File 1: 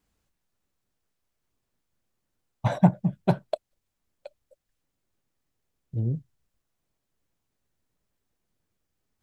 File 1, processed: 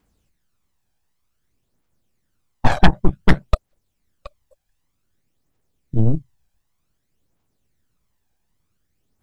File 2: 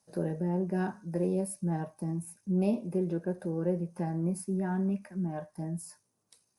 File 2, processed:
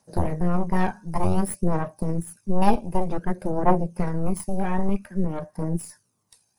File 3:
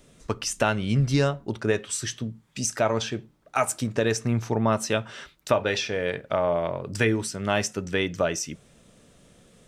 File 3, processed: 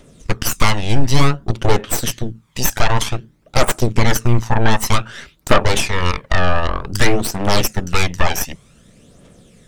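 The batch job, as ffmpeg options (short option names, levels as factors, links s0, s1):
-af "aeval=exprs='0.531*(cos(1*acos(clip(val(0)/0.531,-1,1)))-cos(1*PI/2))+0.237*(cos(8*acos(clip(val(0)/0.531,-1,1)))-cos(8*PI/2))':c=same,aphaser=in_gain=1:out_gain=1:delay=1.3:decay=0.48:speed=0.54:type=triangular,acontrast=40,volume=0.891"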